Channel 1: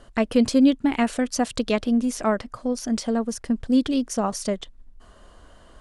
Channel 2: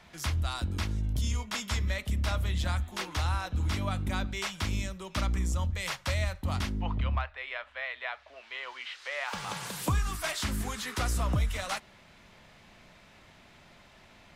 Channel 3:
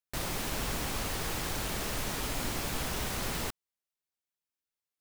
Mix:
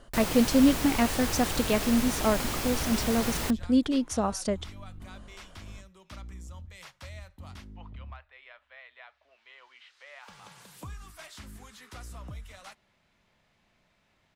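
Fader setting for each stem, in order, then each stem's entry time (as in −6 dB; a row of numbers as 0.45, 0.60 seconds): −3.5, −14.0, +2.5 decibels; 0.00, 0.95, 0.00 seconds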